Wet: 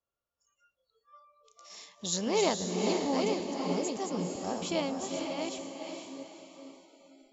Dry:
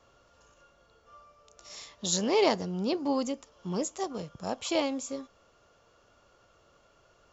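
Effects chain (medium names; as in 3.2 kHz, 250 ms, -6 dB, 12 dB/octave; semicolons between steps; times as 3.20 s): chunks repeated in reverse 567 ms, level -5 dB; echo that smears into a reverb 478 ms, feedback 40%, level -4.5 dB; spectral noise reduction 27 dB; trim -3.5 dB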